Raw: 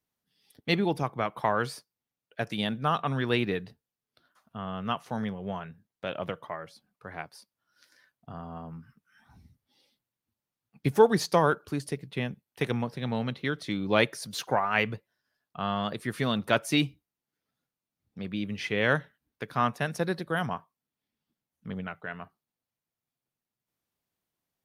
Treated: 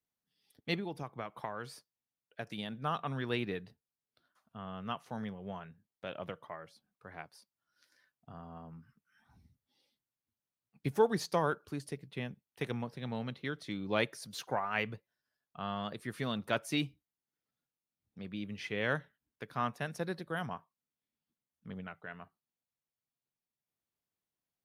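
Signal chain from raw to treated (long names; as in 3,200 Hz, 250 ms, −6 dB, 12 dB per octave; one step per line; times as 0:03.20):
0:00.74–0:02.82: downward compressor 5 to 1, threshold −28 dBFS, peak gain reduction 8 dB
level −8 dB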